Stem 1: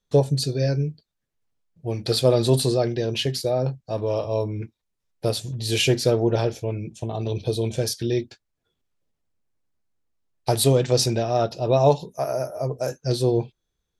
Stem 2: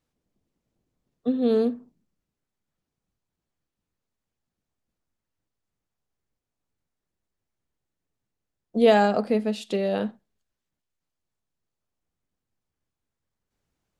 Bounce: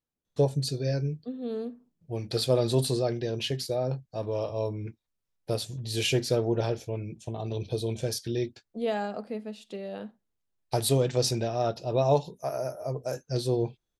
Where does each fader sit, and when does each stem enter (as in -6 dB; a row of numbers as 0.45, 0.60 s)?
-6.0, -12.0 dB; 0.25, 0.00 s